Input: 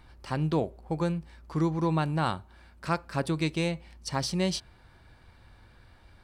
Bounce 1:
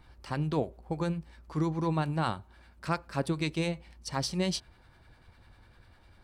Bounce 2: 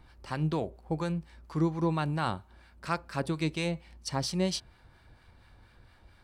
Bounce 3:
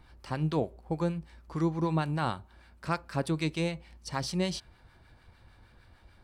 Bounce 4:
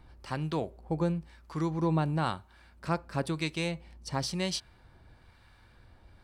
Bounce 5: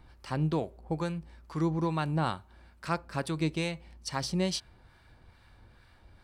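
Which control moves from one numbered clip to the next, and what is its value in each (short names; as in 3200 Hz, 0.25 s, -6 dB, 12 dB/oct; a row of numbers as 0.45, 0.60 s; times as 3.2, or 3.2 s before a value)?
harmonic tremolo, rate: 10, 4.3, 6.6, 1, 2.3 Hz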